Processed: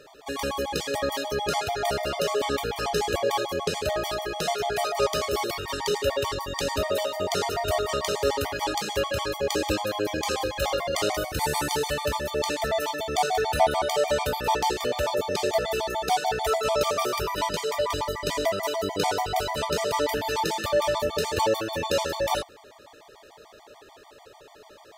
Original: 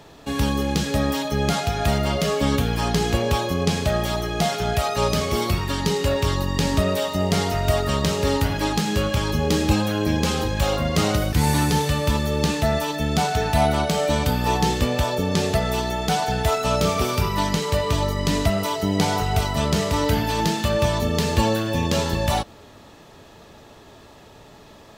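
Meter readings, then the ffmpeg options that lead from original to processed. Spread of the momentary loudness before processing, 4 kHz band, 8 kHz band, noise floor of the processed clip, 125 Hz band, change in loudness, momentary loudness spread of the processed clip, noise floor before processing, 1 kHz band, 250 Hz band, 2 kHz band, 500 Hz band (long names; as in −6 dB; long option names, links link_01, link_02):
2 LU, −3.0 dB, −3.5 dB, −51 dBFS, −15.5 dB, −4.5 dB, 4 LU, −47 dBFS, −2.0 dB, −12.0 dB, −3.0 dB, −1.5 dB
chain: -af "lowshelf=frequency=310:width_type=q:width=1.5:gain=-11,afftfilt=real='re*gt(sin(2*PI*6.8*pts/sr)*(1-2*mod(floor(b*sr/1024/610),2)),0)':imag='im*gt(sin(2*PI*6.8*pts/sr)*(1-2*mod(floor(b*sr/1024/610),2)),0)':win_size=1024:overlap=0.75"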